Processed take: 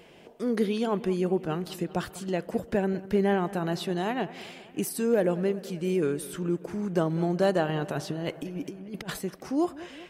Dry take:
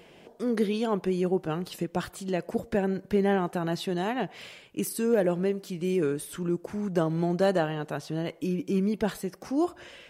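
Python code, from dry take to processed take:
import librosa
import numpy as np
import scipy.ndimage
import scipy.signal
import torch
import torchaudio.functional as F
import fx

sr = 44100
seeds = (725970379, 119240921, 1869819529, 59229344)

p1 = fx.over_compress(x, sr, threshold_db=-32.0, ratio=-0.5, at=(7.69, 9.19))
y = p1 + fx.echo_bbd(p1, sr, ms=196, stages=4096, feedback_pct=65, wet_db=-18.0, dry=0)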